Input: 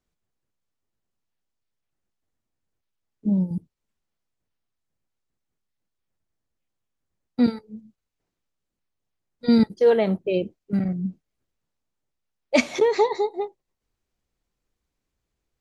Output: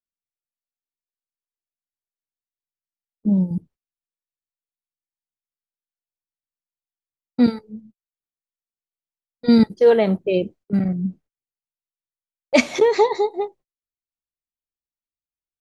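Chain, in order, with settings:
noise gate −49 dBFS, range −29 dB
one half of a high-frequency compander decoder only
level +3.5 dB

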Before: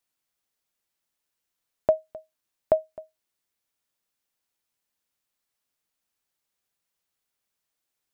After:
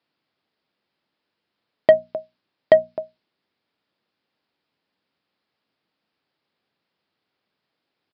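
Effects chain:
mains-hum notches 60/120/180/240 Hz
soft clipping −17 dBFS, distortion −12 dB
high-pass filter 180 Hz 12 dB per octave
low-shelf EQ 380 Hz +11.5 dB
downsampling to 11,025 Hz
high-shelf EQ 2,000 Hz +7 dB
one half of a high-frequency compander decoder only
level +8.5 dB

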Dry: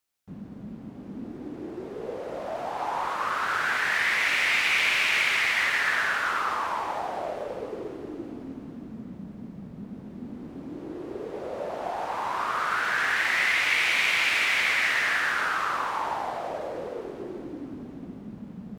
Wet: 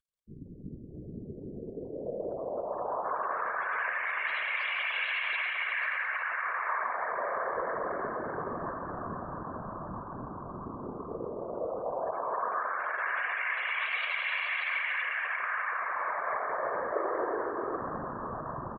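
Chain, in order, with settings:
variable-slope delta modulation 64 kbit/s
feedback echo with a band-pass in the loop 648 ms, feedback 85%, band-pass 890 Hz, level −7 dB
gate on every frequency bin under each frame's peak −15 dB strong
dense smooth reverb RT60 3.8 s, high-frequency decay 0.35×, pre-delay 80 ms, DRR 0.5 dB
brickwall limiter −19.5 dBFS, peak gain reduction 9.5 dB
random phases in short frames
comb filter 1.8 ms, depth 40%
floating-point word with a short mantissa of 8 bits
0:12.18–0:13.04: high-pass filter 86 Hz → 270 Hz 24 dB per octave
0:16.92–0:17.81: low shelf with overshoot 260 Hz −8 dB, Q 3
level −5 dB

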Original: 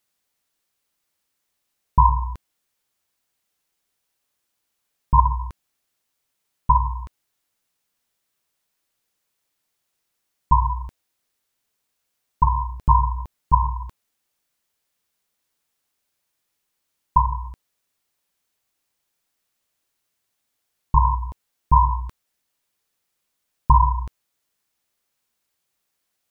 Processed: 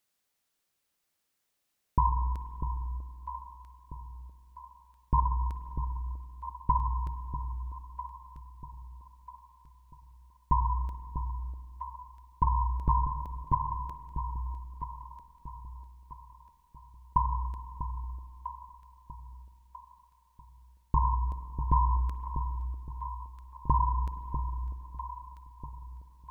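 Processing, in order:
downward compressor 3 to 1, threshold −20 dBFS, peak gain reduction 9 dB
delay that swaps between a low-pass and a high-pass 646 ms, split 820 Hz, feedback 61%, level −7 dB
on a send at −11.5 dB: convolution reverb RT60 3.3 s, pre-delay 46 ms
on the sum: level −3.5 dB

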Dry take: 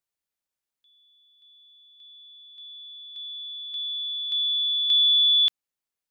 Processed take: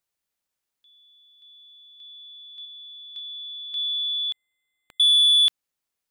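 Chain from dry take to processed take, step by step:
soft clipping −17 dBFS, distortion −19 dB
0:02.62–0:03.77: double-tracking delay 30 ms −8.5 dB
0:04.32–0:05.00: bad sample-rate conversion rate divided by 8×, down filtered, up hold
level +4.5 dB

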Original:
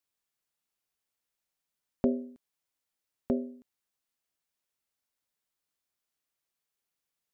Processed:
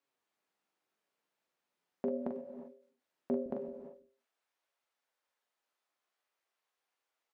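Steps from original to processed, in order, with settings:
high-pass filter 240 Hz 12 dB per octave, from 0:03.46 540 Hz
downward compressor, threshold −30 dBFS, peak gain reduction 7.5 dB
low-pass filter 1,300 Hz 6 dB per octave
single-tap delay 224 ms −8.5 dB
brickwall limiter −32 dBFS, peak gain reduction 11.5 dB
double-tracking delay 42 ms −5.5 dB
flanger 0.4 Hz, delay 7 ms, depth 8.3 ms, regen +58%
reverb whose tail is shaped and stops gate 380 ms rising, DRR 10 dB
every ending faded ahead of time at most 110 dB per second
level +12 dB

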